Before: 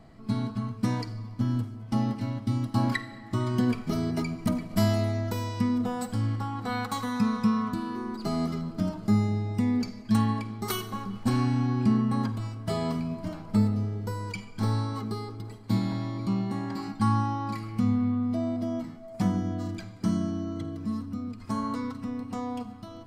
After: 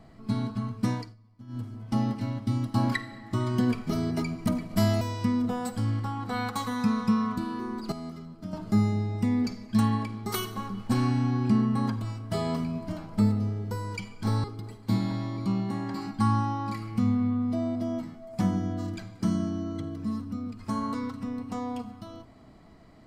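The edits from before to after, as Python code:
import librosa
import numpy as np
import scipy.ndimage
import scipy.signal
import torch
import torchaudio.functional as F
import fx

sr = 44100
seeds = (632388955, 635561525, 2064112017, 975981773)

y = fx.edit(x, sr, fx.fade_down_up(start_s=0.89, length_s=0.85, db=-20.0, fade_s=0.27),
    fx.cut(start_s=5.01, length_s=0.36),
    fx.clip_gain(start_s=8.28, length_s=0.61, db=-10.0),
    fx.cut(start_s=14.8, length_s=0.45), tone=tone)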